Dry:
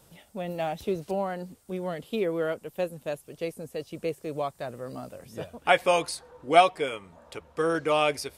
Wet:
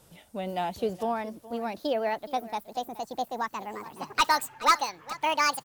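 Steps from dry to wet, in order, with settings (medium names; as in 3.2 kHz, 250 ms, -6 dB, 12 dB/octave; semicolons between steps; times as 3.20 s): gliding tape speed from 99% -> 198%; hard clipper -14.5 dBFS, distortion -14 dB; delay 421 ms -17.5 dB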